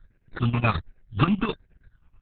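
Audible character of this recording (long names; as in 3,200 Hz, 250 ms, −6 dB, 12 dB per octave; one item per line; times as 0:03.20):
aliases and images of a low sample rate 3,100 Hz, jitter 0%
chopped level 9.4 Hz, depth 65%, duty 65%
phaser sweep stages 8, 1.3 Hz, lowest notch 490–1,100 Hz
Opus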